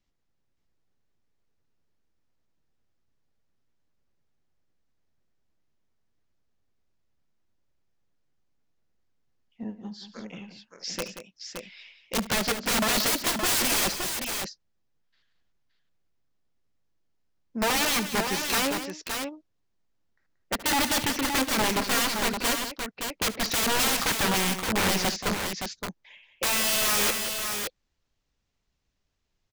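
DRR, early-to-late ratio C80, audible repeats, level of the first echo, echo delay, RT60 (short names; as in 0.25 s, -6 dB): none, none, 3, -17.0 dB, 72 ms, none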